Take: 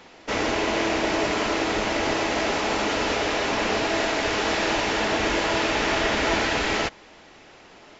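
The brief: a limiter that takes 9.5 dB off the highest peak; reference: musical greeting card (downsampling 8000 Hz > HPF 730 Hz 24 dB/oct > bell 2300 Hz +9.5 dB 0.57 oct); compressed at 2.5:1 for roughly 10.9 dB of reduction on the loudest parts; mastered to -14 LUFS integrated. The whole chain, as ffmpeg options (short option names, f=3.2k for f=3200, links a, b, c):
-af "acompressor=threshold=-37dB:ratio=2.5,alimiter=level_in=7dB:limit=-24dB:level=0:latency=1,volume=-7dB,aresample=8000,aresample=44100,highpass=f=730:w=0.5412,highpass=f=730:w=1.3066,equalizer=f=2.3k:t=o:w=0.57:g=9.5,volume=23dB"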